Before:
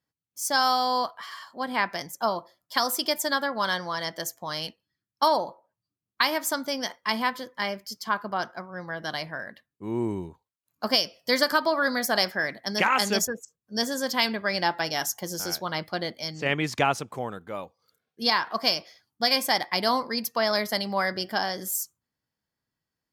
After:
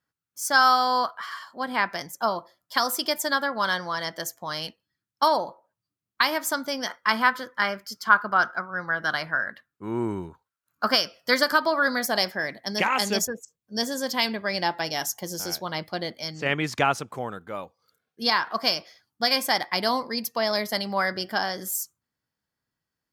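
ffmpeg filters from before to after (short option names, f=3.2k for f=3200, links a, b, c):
-af "asetnsamples=n=441:p=0,asendcmd='1.38 equalizer g 4;6.87 equalizer g 15;11.34 equalizer g 4;12.06 equalizer g -3;16.11 equalizer g 3.5;19.87 equalizer g -4;20.74 equalizer g 3.5',equalizer=f=1.4k:t=o:w=0.6:g=10.5"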